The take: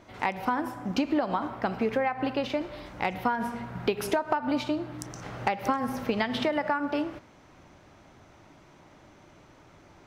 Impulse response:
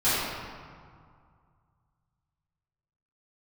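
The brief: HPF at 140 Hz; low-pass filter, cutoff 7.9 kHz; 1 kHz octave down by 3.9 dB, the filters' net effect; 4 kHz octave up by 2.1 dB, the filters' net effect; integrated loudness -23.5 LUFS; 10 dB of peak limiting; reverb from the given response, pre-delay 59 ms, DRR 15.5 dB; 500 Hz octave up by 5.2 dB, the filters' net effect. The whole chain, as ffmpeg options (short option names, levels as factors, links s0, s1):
-filter_complex "[0:a]highpass=140,lowpass=7900,equalizer=f=500:t=o:g=9,equalizer=f=1000:t=o:g=-9,equalizer=f=4000:t=o:g=3.5,alimiter=limit=0.141:level=0:latency=1,asplit=2[s0][s1];[1:a]atrim=start_sample=2205,adelay=59[s2];[s1][s2]afir=irnorm=-1:irlink=0,volume=0.0282[s3];[s0][s3]amix=inputs=2:normalize=0,volume=2.11"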